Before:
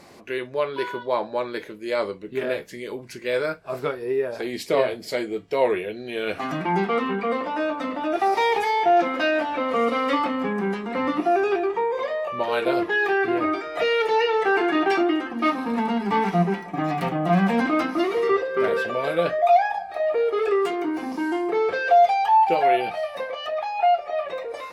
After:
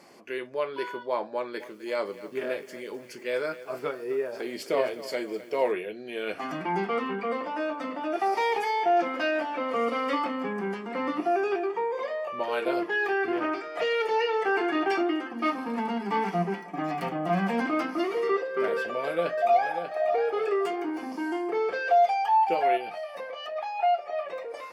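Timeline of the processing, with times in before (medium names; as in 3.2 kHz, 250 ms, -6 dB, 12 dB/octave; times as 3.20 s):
1.34–5.72 s: bit-crushed delay 257 ms, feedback 55%, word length 7-bit, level -15 dB
13.32–13.95 s: loudspeaker Doppler distortion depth 0.19 ms
18.78–19.94 s: echo throw 590 ms, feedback 25%, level -8 dB
22.77–23.56 s: compression 2:1, threshold -29 dBFS
whole clip: high-pass 190 Hz 12 dB/octave; peaking EQ 4.4 kHz +4 dB 0.26 oct; band-stop 3.9 kHz, Q 5.2; trim -5 dB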